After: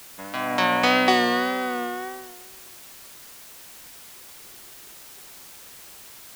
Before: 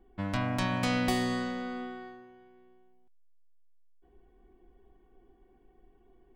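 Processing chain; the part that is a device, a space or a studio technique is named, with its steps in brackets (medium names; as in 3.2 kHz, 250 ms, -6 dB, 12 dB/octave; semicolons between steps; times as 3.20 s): expander -50 dBFS; dictaphone (band-pass 400–4400 Hz; level rider gain up to 14 dB; wow and flutter; white noise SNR 17 dB)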